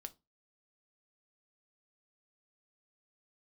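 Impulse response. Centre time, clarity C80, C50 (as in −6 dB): 4 ms, 30.5 dB, 22.0 dB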